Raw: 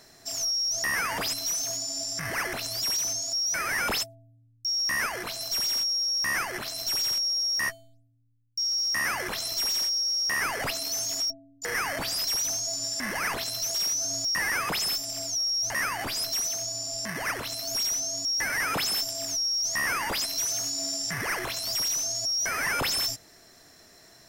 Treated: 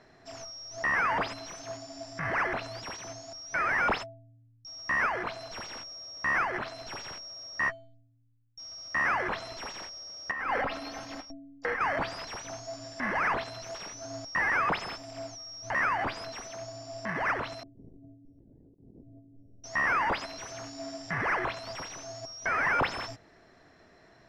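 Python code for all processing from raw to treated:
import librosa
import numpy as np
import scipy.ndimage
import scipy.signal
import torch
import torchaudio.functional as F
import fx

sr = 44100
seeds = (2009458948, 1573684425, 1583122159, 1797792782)

y = fx.chain(x, sr, fx.peak_eq(hz=7200.0, db=-11.5, octaves=0.54),
    fx.comb(ms=3.8, depth=0.52),
    fx.over_compress(threshold_db=-32.0, ratio=-1.0), at=(10.31, 11.81))
y = fx.chain(y, sr, fx.cheby2_lowpass(hz=1200.0, order=4, stop_db=60),
    fx.over_compress(threshold_db=-55.0, ratio=-1.0), at=(17.63, 19.64))
y = scipy.signal.sosfilt(scipy.signal.butter(2, 2200.0, 'lowpass', fs=sr, output='sos'), y)
y = fx.dynamic_eq(y, sr, hz=990.0, q=0.86, threshold_db=-47.0, ratio=4.0, max_db=5)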